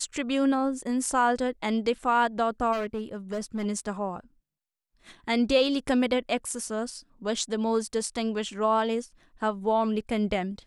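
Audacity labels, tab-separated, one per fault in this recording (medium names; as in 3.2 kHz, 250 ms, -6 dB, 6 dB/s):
2.720000	3.660000	clipped -26 dBFS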